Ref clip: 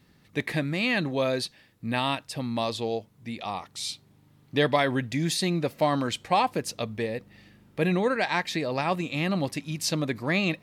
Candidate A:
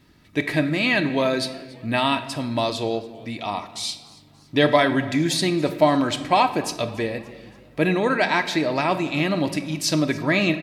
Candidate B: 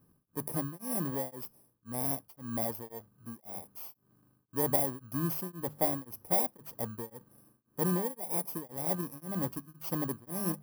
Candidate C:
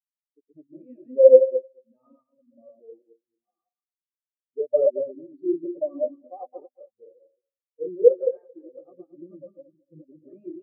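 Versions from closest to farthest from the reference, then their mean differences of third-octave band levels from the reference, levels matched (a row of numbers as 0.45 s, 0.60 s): A, B, C; 4.5 dB, 10.0 dB, 23.5 dB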